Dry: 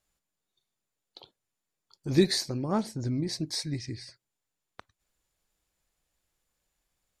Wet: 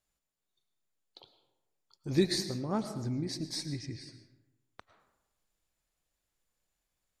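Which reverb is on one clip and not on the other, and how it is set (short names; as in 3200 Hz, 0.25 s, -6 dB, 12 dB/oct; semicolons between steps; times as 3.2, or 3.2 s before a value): digital reverb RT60 1 s, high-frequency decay 0.55×, pre-delay 70 ms, DRR 10 dB; gain -4.5 dB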